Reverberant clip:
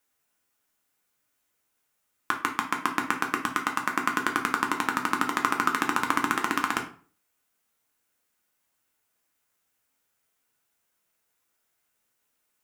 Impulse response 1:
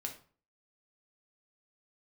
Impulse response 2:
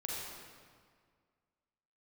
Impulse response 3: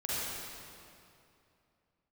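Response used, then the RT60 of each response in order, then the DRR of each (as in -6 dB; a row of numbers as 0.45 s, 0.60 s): 1; 0.45 s, 1.9 s, 2.6 s; 1.5 dB, -4.5 dB, -9.0 dB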